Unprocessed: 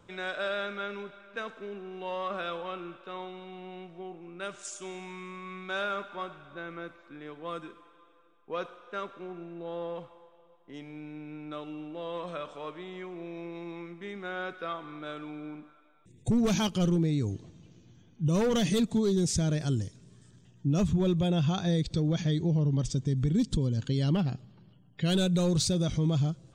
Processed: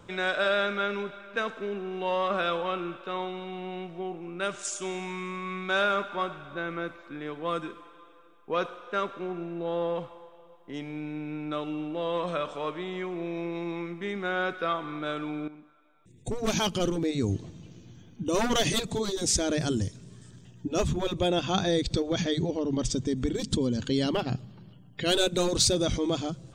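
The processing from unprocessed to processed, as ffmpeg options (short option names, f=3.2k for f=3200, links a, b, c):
-filter_complex "[0:a]asplit=2[a][b];[a]atrim=end=15.48,asetpts=PTS-STARTPTS,afade=t=out:st=15.476:d=0.004:c=hsin:silence=0.211349[c];[b]atrim=start=15.48,asetpts=PTS-STARTPTS,afade=t=in:d=1.83:silence=0.211349[d];[c][d]concat=n=2:v=0:a=1,afftfilt=real='re*lt(hypot(re,im),0.316)':imag='im*lt(hypot(re,im),0.316)':win_size=1024:overlap=0.75,volume=7dB"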